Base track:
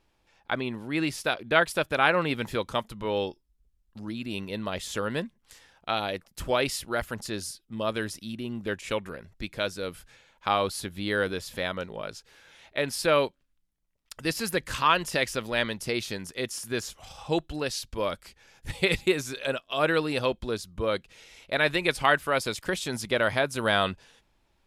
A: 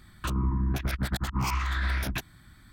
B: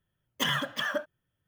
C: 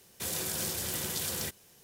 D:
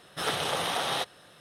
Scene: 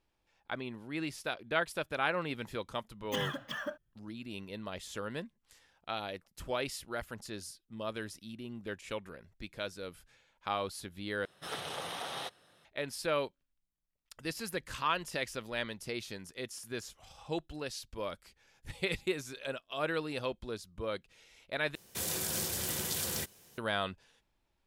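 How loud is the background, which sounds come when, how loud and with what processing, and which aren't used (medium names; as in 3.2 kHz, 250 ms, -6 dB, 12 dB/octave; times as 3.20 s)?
base track -9.5 dB
2.72 s: add B -9 dB + bass shelf 220 Hz +9.5 dB
11.25 s: replace with D -10.5 dB
21.75 s: replace with C -1 dB
not used: A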